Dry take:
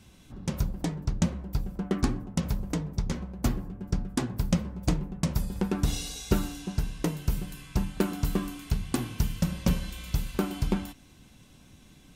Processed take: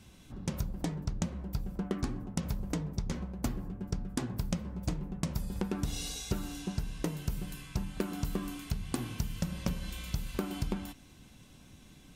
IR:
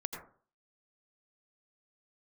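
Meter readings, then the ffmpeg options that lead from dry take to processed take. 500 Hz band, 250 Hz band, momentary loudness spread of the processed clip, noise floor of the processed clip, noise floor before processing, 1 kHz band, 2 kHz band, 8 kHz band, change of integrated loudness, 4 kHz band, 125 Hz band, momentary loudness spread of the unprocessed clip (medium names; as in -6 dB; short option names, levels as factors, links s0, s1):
-6.0 dB, -6.0 dB, 5 LU, -56 dBFS, -55 dBFS, -5.5 dB, -5.0 dB, -4.0 dB, -6.0 dB, -4.0 dB, -6.0 dB, 5 LU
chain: -af "acompressor=threshold=0.0398:ratio=6,volume=0.891"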